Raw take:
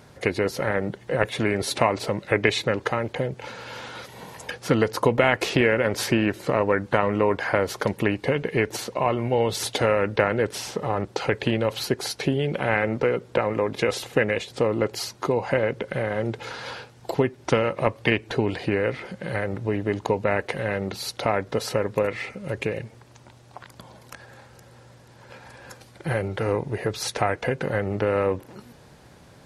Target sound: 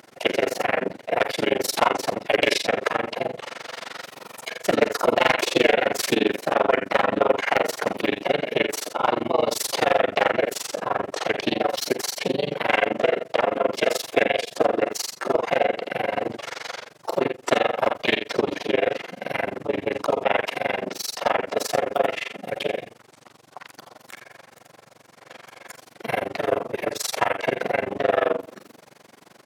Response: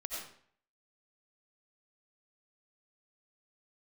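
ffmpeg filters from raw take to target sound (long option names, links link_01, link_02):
-filter_complex "[0:a]highpass=260,bandreject=frequency=910:width=27,aecho=1:1:47|68:0.126|0.422,asplit=3[link_01][link_02][link_03];[link_02]asetrate=55563,aresample=44100,atempo=0.793701,volume=-10dB[link_04];[link_03]asetrate=58866,aresample=44100,atempo=0.749154,volume=-1dB[link_05];[link_01][link_04][link_05]amix=inputs=3:normalize=0,asoftclip=type=hard:threshold=-10dB,asplit=2[link_06][link_07];[1:a]atrim=start_sample=2205[link_08];[link_07][link_08]afir=irnorm=-1:irlink=0,volume=-22.5dB[link_09];[link_06][link_09]amix=inputs=2:normalize=0,tremolo=f=23:d=1,volume=2.5dB"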